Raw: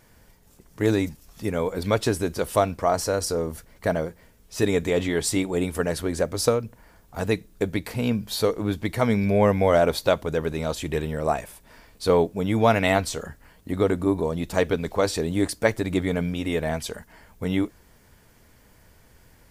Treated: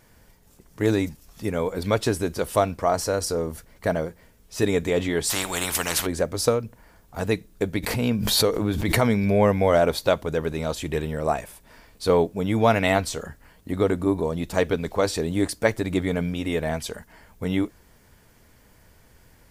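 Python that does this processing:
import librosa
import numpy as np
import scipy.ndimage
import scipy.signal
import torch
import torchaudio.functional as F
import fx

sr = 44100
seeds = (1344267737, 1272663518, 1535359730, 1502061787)

y = fx.spectral_comp(x, sr, ratio=4.0, at=(5.29, 6.05), fade=0.02)
y = fx.pre_swell(y, sr, db_per_s=32.0, at=(7.82, 9.46), fade=0.02)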